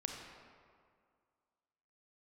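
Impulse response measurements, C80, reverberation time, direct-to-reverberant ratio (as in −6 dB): 4.0 dB, 2.1 s, 1.5 dB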